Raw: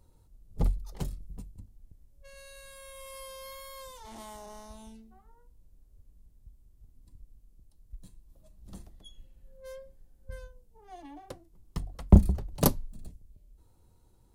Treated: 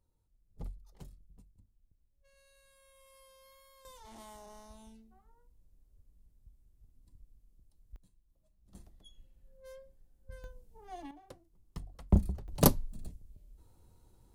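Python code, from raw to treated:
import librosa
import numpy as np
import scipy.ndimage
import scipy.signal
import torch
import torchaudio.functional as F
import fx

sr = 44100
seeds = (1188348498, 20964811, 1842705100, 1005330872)

y = fx.gain(x, sr, db=fx.steps((0.0, -16.0), (3.85, -6.0), (7.96, -15.5), (8.75, -6.5), (10.44, 1.5), (11.11, -8.5), (12.48, 0.5)))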